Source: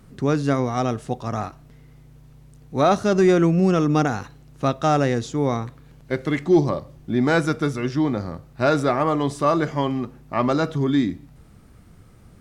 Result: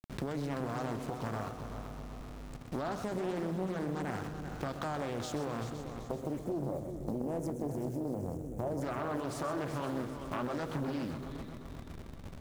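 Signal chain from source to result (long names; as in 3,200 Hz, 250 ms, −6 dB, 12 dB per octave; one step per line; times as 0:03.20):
hold until the input has moved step −40.5 dBFS
gain on a spectral selection 0:06.00–0:08.82, 740–6,400 Hz −20 dB
brickwall limiter −18.5 dBFS, peak gain reduction 11 dB
downward compressor 4 to 1, threshold −37 dBFS, peak gain reduction 13 dB
on a send: echo machine with several playback heads 128 ms, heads first and third, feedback 64%, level −10 dB
on the sum: highs frequency-modulated by the lows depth 0.78 ms
level +1.5 dB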